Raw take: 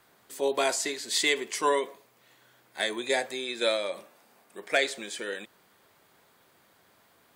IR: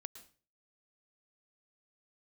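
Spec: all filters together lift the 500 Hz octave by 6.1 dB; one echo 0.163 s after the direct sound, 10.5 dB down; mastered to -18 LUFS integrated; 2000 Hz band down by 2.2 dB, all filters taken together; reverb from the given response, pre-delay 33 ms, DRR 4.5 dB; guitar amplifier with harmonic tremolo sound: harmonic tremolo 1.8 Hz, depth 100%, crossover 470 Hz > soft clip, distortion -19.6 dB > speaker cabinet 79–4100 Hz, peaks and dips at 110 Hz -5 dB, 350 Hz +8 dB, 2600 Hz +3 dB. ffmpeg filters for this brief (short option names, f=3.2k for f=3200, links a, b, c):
-filter_complex "[0:a]equalizer=f=500:t=o:g=5.5,equalizer=f=2k:t=o:g=-4,aecho=1:1:163:0.299,asplit=2[a][b];[1:a]atrim=start_sample=2205,adelay=33[c];[b][c]afir=irnorm=-1:irlink=0,volume=0.5dB[d];[a][d]amix=inputs=2:normalize=0,acrossover=split=470[e][f];[e]aeval=exprs='val(0)*(1-1/2+1/2*cos(2*PI*1.8*n/s))':c=same[g];[f]aeval=exprs='val(0)*(1-1/2-1/2*cos(2*PI*1.8*n/s))':c=same[h];[g][h]amix=inputs=2:normalize=0,asoftclip=threshold=-18dB,highpass=79,equalizer=f=110:t=q:w=4:g=-5,equalizer=f=350:t=q:w=4:g=8,equalizer=f=2.6k:t=q:w=4:g=3,lowpass=f=4.1k:w=0.5412,lowpass=f=4.1k:w=1.3066,volume=13dB"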